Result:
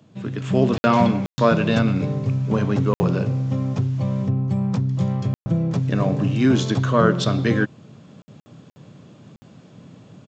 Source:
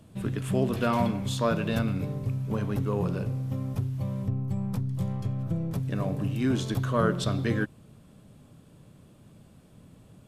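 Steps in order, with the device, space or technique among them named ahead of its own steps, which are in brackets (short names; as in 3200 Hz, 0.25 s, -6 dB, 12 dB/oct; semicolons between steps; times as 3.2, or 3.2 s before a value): call with lost packets (HPF 110 Hz 24 dB/oct; downsampling 16000 Hz; AGC gain up to 8 dB; packet loss packets of 60 ms random); gain +1.5 dB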